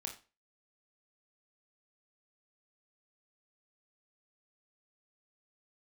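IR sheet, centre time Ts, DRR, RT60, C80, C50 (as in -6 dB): 17 ms, 2.0 dB, 0.30 s, 15.5 dB, 9.5 dB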